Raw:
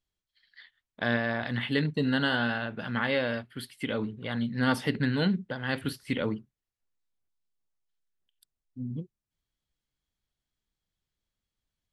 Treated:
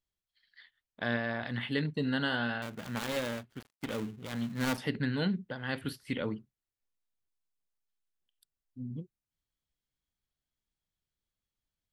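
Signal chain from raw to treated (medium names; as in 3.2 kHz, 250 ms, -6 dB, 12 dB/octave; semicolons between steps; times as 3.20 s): 2.62–4.78 s: dead-time distortion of 0.24 ms; trim -4.5 dB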